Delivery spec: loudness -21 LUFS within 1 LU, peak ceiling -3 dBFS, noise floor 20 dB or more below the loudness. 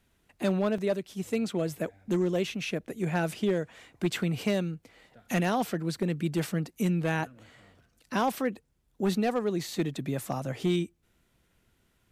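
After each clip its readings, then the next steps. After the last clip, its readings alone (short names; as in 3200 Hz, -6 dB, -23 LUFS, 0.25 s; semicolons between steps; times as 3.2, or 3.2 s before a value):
clipped 0.7%; flat tops at -19.5 dBFS; dropouts 1; longest dropout 3.9 ms; loudness -30.5 LUFS; peak -19.5 dBFS; loudness target -21.0 LUFS
-> clip repair -19.5 dBFS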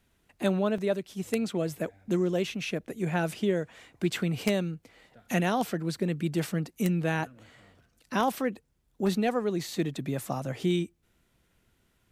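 clipped 0.0%; dropouts 1; longest dropout 3.9 ms
-> interpolate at 0.78, 3.9 ms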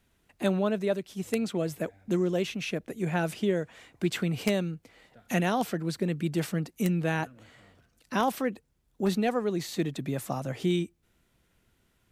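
dropouts 0; loudness -30.0 LUFS; peak -10.5 dBFS; loudness target -21.0 LUFS
-> gain +9 dB; limiter -3 dBFS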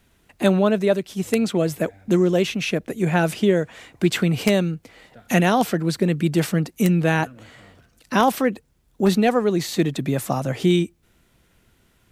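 loudness -21.0 LUFS; peak -3.0 dBFS; noise floor -62 dBFS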